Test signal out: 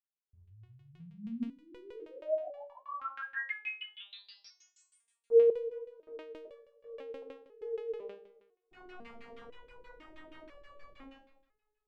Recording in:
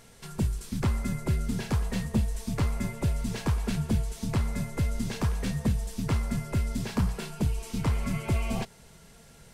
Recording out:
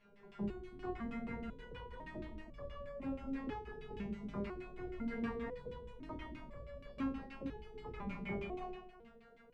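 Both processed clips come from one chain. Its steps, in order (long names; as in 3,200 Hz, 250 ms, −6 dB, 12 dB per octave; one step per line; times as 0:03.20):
coupled-rooms reverb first 0.94 s, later 3.2 s, from −27 dB, DRR −6.5 dB
auto-filter low-pass saw down 6.3 Hz 300–2,800 Hz
step-sequenced resonator 2 Hz 200–570 Hz
level −3.5 dB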